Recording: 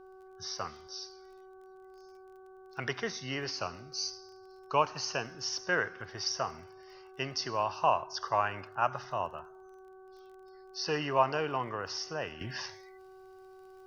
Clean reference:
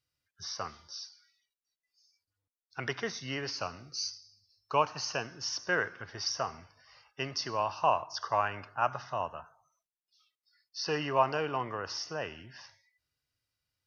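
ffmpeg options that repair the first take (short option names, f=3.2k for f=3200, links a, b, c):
-af "adeclick=t=4,bandreject=f=377.7:t=h:w=4,bandreject=f=755.4:t=h:w=4,bandreject=f=1.1331k:t=h:w=4,bandreject=f=1.5108k:t=h:w=4,agate=range=-21dB:threshold=-45dB,asetnsamples=n=441:p=0,asendcmd='12.41 volume volume -11dB',volume=0dB"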